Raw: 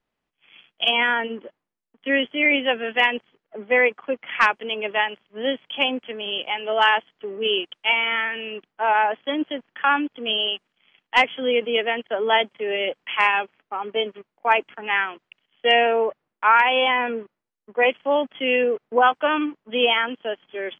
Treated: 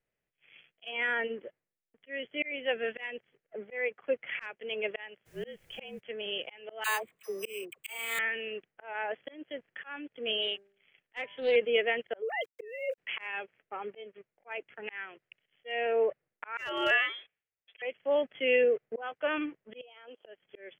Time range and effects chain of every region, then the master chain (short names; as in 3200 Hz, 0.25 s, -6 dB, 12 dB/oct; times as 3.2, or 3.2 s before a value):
5.25–5.99 frequency shift -40 Hz + added noise pink -53 dBFS
6.84–8.19 careless resampling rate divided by 8×, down none, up hold + bell 1100 Hz +13 dB 0.23 oct + dispersion lows, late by 66 ms, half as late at 700 Hz
10.42–11.56 de-hum 198.8 Hz, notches 9 + Doppler distortion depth 0.18 ms
12.22–12.98 sine-wave speech + sample gate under -45.5 dBFS
16.57–17.82 tilt +4.5 dB/oct + inverted band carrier 3700 Hz + hard clip -8.5 dBFS
19.81–20.26 HPF 500 Hz + bell 1900 Hz -15 dB 0.97 oct + compressor 10:1, threshold -35 dBFS
whole clip: graphic EQ 125/250/500/1000/2000/4000 Hz +5/-7/+6/-10/+6/-7 dB; auto swell 0.414 s; gain -6.5 dB